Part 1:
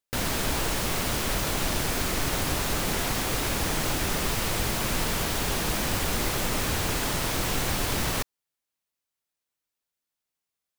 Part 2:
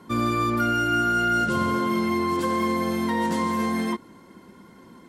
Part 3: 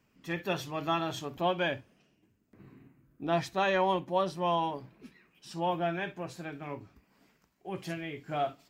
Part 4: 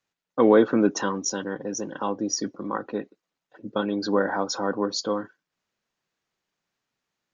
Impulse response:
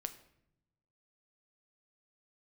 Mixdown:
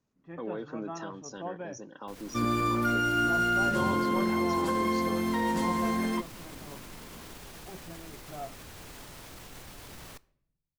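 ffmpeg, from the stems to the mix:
-filter_complex "[0:a]alimiter=limit=0.1:level=0:latency=1:release=30,adelay=1950,volume=0.106,asplit=2[s0][s1];[s1]volume=0.473[s2];[1:a]adelay=2250,volume=0.631[s3];[2:a]lowpass=1200,volume=0.376[s4];[3:a]acrossover=split=2800[s5][s6];[s6]acompressor=threshold=0.00708:ratio=4:attack=1:release=60[s7];[s5][s7]amix=inputs=2:normalize=0,equalizer=f=6300:t=o:w=1.5:g=10.5,alimiter=limit=0.178:level=0:latency=1:release=152,volume=0.211,asplit=2[s8][s9];[s9]apad=whole_len=561743[s10];[s0][s10]sidechaincompress=threshold=0.00562:ratio=8:attack=22:release=176[s11];[4:a]atrim=start_sample=2205[s12];[s2][s12]afir=irnorm=-1:irlink=0[s13];[s11][s3][s4][s8][s13]amix=inputs=5:normalize=0"

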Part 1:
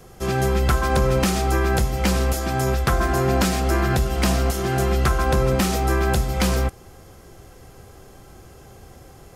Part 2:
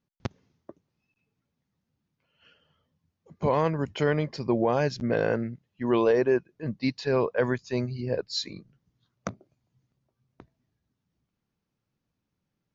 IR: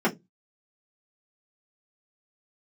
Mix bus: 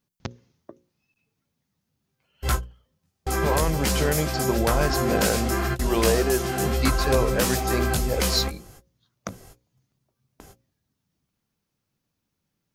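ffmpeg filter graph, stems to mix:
-filter_complex "[0:a]flanger=delay=17:depth=3.5:speed=2.8,adelay=1800,volume=0.841[s0];[1:a]alimiter=limit=0.15:level=0:latency=1:release=43,volume=1.26,asplit=2[s1][s2];[s2]apad=whole_len=491868[s3];[s0][s3]sidechaingate=range=0.00141:threshold=0.00112:ratio=16:detection=peak[s4];[s4][s1]amix=inputs=2:normalize=0,highshelf=f=4500:g=9,bandreject=f=60:t=h:w=6,bandreject=f=120:t=h:w=6,bandreject=f=180:t=h:w=6,bandreject=f=240:t=h:w=6,bandreject=f=300:t=h:w=6,bandreject=f=360:t=h:w=6,bandreject=f=420:t=h:w=6,bandreject=f=480:t=h:w=6,bandreject=f=540:t=h:w=6"

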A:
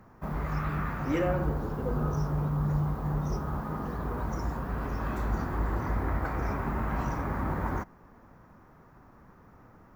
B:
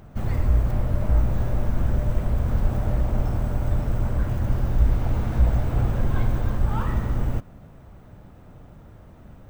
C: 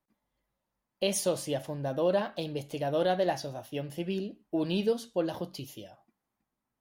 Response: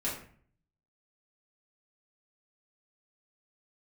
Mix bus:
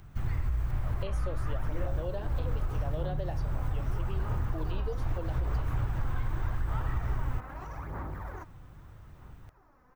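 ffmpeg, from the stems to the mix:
-filter_complex "[0:a]alimiter=level_in=1.41:limit=0.0631:level=0:latency=1:release=14,volume=0.708,aphaser=in_gain=1:out_gain=1:delay=4:decay=0.56:speed=0.81:type=sinusoidal,adelay=600,volume=0.422[s0];[1:a]equalizer=f=570:t=o:w=1.1:g=-13,alimiter=limit=0.178:level=0:latency=1:release=102,volume=0.75[s1];[2:a]volume=0.376,asplit=2[s2][s3];[s3]apad=whole_len=418516[s4];[s1][s4]sidechaincompress=threshold=0.0112:ratio=8:attack=28:release=254[s5];[s0][s5][s2]amix=inputs=3:normalize=0,equalizer=f=220:t=o:w=0.63:g=-9.5,acrossover=split=460|2600[s6][s7][s8];[s6]acompressor=threshold=0.0501:ratio=4[s9];[s7]acompressor=threshold=0.0112:ratio=4[s10];[s8]acompressor=threshold=0.00112:ratio=4[s11];[s9][s10][s11]amix=inputs=3:normalize=0"

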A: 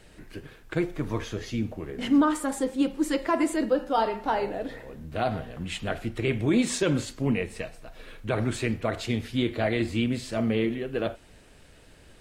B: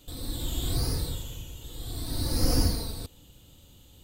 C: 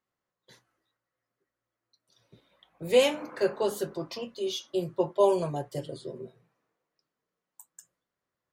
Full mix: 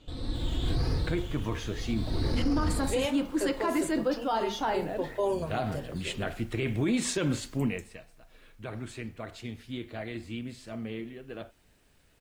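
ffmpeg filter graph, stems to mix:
-filter_complex "[0:a]equalizer=f=500:t=o:w=0.77:g=-3,acrusher=bits=9:mix=0:aa=0.000001,adelay=350,volume=0.891,afade=t=out:st=7.53:d=0.4:silence=0.316228[s0];[1:a]lowpass=3300,volume=1.19[s1];[2:a]volume=0.631[s2];[s0][s1][s2]amix=inputs=3:normalize=0,alimiter=limit=0.106:level=0:latency=1:release=26"

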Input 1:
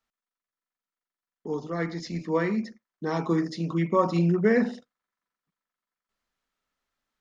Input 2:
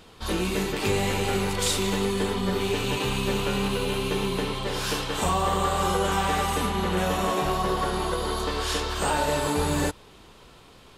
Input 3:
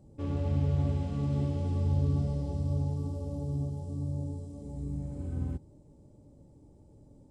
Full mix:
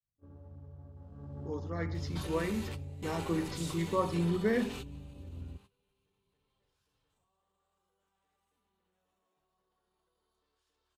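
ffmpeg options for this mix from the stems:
-filter_complex "[0:a]volume=0.398,asplit=2[s0][s1];[1:a]bass=f=250:g=-3,treble=f=4000:g=2,alimiter=level_in=1.19:limit=0.0631:level=0:latency=1,volume=0.841,acompressor=threshold=0.02:ratio=6,adelay=1950,volume=0.531[s2];[2:a]adynamicequalizer=threshold=0.00794:dfrequency=240:dqfactor=0.76:tfrequency=240:tqfactor=0.76:attack=5:release=100:ratio=0.375:range=3:mode=cutabove:tftype=bell,afwtdn=0.00794,equalizer=f=130:w=5:g=-5.5,volume=0.376,afade=t=in:st=0.92:d=0.51:silence=0.266073[s3];[s1]apad=whole_len=569851[s4];[s2][s4]sidechaingate=range=0.0891:threshold=0.00398:ratio=16:detection=peak[s5];[s0][s5][s3]amix=inputs=3:normalize=0,agate=range=0.141:threshold=0.002:ratio=16:detection=peak"

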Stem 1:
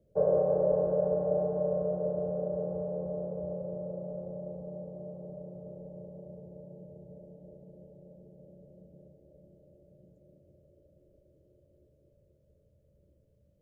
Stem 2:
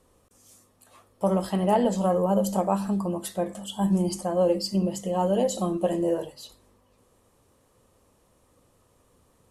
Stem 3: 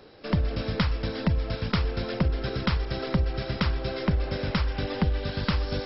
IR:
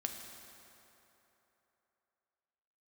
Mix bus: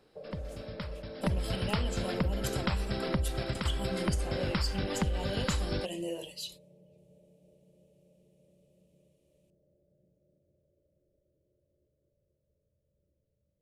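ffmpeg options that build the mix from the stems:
-filter_complex "[0:a]acompressor=threshold=0.0251:ratio=6,volume=0.266[s0];[1:a]agate=range=0.158:threshold=0.00251:ratio=16:detection=peak,highshelf=f=1900:t=q:w=3:g=10.5,volume=0.376,asplit=2[s1][s2];[2:a]volume=1.41[s3];[s2]apad=whole_len=258383[s4];[s3][s4]sidechaingate=range=0.141:threshold=0.00708:ratio=16:detection=peak[s5];[s0][s1][s5]amix=inputs=3:normalize=0,acompressor=threshold=0.02:ratio=2"

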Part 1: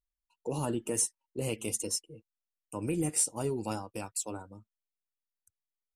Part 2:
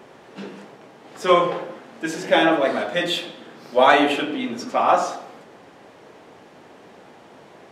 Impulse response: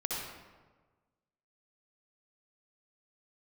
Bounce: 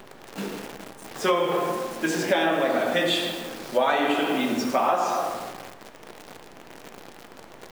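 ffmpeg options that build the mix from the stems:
-filter_complex "[0:a]acompressor=threshold=0.00794:ratio=2.5,highpass=1200,volume=0.282[s0];[1:a]volume=0.891,asplit=2[s1][s2];[s2]volume=0.501[s3];[2:a]atrim=start_sample=2205[s4];[s3][s4]afir=irnorm=-1:irlink=0[s5];[s0][s1][s5]amix=inputs=3:normalize=0,acrusher=bits=7:dc=4:mix=0:aa=0.000001,acompressor=threshold=0.112:ratio=6"

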